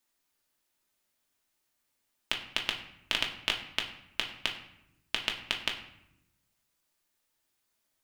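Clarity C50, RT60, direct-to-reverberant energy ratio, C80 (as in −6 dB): 9.0 dB, 0.85 s, 0.5 dB, 11.5 dB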